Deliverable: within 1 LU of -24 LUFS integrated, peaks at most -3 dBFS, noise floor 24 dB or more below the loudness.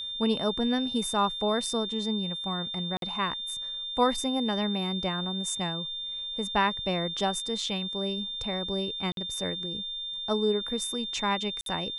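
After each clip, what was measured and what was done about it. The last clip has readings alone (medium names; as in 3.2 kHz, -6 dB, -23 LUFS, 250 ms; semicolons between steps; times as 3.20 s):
dropouts 3; longest dropout 52 ms; steady tone 3.6 kHz; tone level -33 dBFS; loudness -29.0 LUFS; peak level -12.0 dBFS; loudness target -24.0 LUFS
-> interpolate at 2.97/9.12/11.61 s, 52 ms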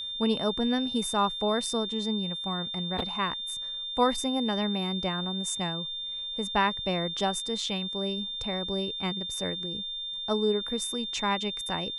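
dropouts 0; steady tone 3.6 kHz; tone level -33 dBFS
-> band-stop 3.6 kHz, Q 30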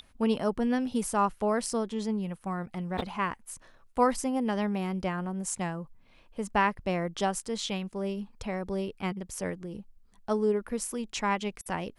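steady tone not found; loudness -31.0 LUFS; peak level -13.0 dBFS; loudness target -24.0 LUFS
-> trim +7 dB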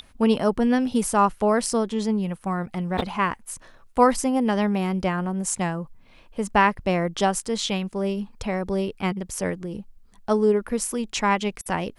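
loudness -24.0 LUFS; peak level -6.0 dBFS; noise floor -52 dBFS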